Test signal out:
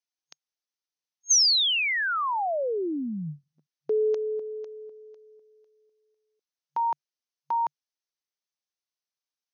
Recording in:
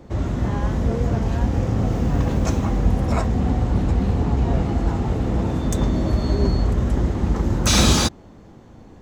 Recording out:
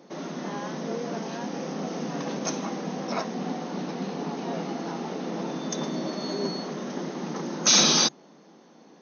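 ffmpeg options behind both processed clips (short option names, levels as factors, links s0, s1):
-af "bass=f=250:g=-7,treble=f=4000:g=10,afftfilt=real='re*between(b*sr/4096,140,6500)':imag='im*between(b*sr/4096,140,6500)':win_size=4096:overlap=0.75,volume=0.631"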